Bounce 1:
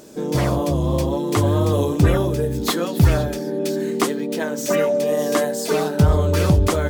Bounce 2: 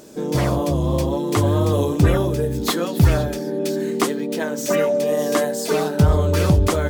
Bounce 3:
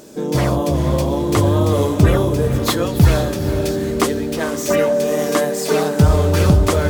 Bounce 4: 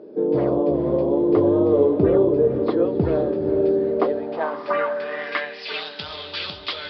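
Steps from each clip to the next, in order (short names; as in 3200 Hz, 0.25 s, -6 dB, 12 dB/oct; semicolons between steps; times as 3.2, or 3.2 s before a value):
nothing audible
diffused feedback echo 0.453 s, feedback 43%, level -9 dB; gain +2.5 dB
downsampling 11025 Hz; band-pass sweep 410 Hz -> 3500 Hz, 3.71–5.9; gain +4.5 dB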